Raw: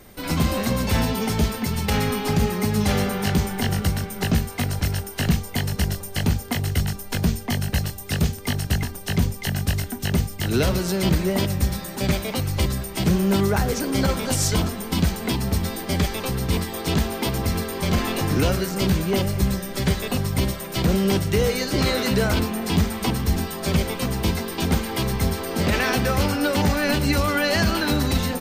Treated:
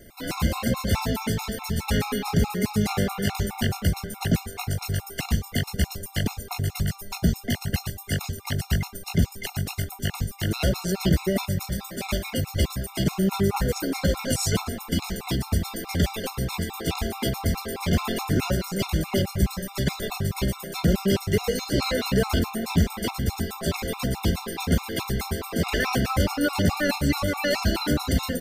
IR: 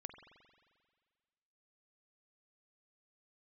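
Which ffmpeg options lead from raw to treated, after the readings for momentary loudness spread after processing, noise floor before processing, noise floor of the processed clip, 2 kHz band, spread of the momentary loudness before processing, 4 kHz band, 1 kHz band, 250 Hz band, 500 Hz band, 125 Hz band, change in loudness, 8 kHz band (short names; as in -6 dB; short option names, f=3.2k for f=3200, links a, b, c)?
6 LU, -35 dBFS, -43 dBFS, -3.5 dB, 5 LU, -3.5 dB, -3.5 dB, -3.0 dB, -3.0 dB, -3.0 dB, -3.0 dB, -3.5 dB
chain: -af "afftfilt=real='re*gt(sin(2*PI*4.7*pts/sr)*(1-2*mod(floor(b*sr/1024/710),2)),0)':imag='im*gt(sin(2*PI*4.7*pts/sr)*(1-2*mod(floor(b*sr/1024/710),2)),0)':win_size=1024:overlap=0.75"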